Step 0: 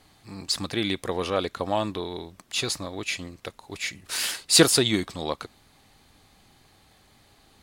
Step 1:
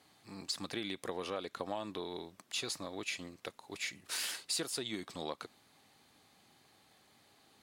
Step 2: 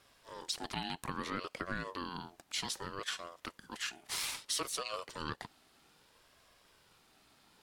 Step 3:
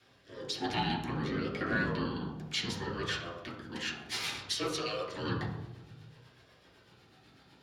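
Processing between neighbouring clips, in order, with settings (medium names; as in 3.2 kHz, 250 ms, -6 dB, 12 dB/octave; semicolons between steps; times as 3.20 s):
compression 10:1, threshold -27 dBFS, peak gain reduction 16.5 dB; Bessel high-pass 180 Hz, order 2; trim -6.5 dB
ring modulator with a swept carrier 690 Hz, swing 25%, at 0.62 Hz; trim +3 dB
rotary cabinet horn 1 Hz, later 8 Hz, at 2.27 s; in parallel at -7 dB: one-sided clip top -31.5 dBFS; on the sum: reverberation RT60 1.1 s, pre-delay 3 ms, DRR -7 dB; trim -8.5 dB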